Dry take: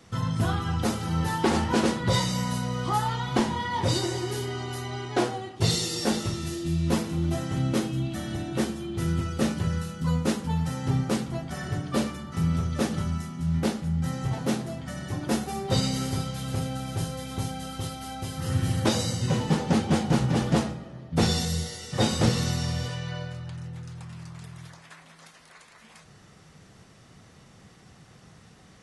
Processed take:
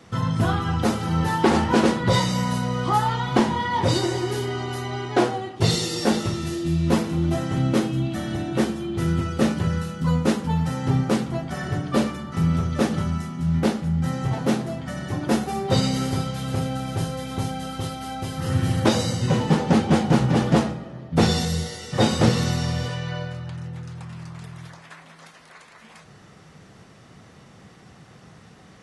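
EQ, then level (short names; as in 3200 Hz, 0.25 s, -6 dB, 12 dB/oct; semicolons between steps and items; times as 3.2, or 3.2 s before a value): low shelf 73 Hz -8.5 dB; high shelf 3800 Hz -7 dB; +6.0 dB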